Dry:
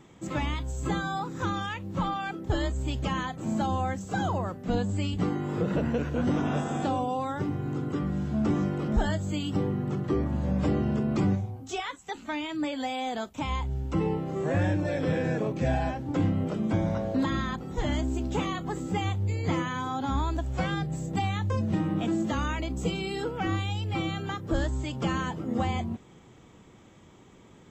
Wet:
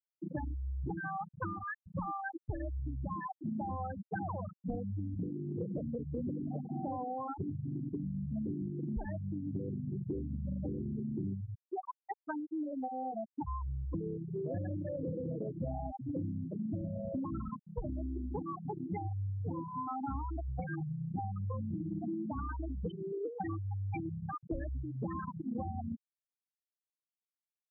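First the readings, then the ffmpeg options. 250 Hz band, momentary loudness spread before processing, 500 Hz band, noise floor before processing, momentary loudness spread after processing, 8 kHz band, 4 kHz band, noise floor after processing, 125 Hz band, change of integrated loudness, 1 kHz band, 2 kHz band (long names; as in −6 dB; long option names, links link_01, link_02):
−9.5 dB, 5 LU, −10.0 dB, −53 dBFS, 3 LU, below −35 dB, below −35 dB, below −85 dBFS, −9.0 dB, −9.5 dB, −9.0 dB, −13.0 dB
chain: -af "lowpass=frequency=4400:width=0.5412,lowpass=frequency=4400:width=1.3066,afftfilt=real='re*gte(hypot(re,im),0.141)':imag='im*gte(hypot(re,im),0.141)':win_size=1024:overlap=0.75,highshelf=frequency=2100:gain=9.5,acompressor=threshold=-35dB:ratio=6"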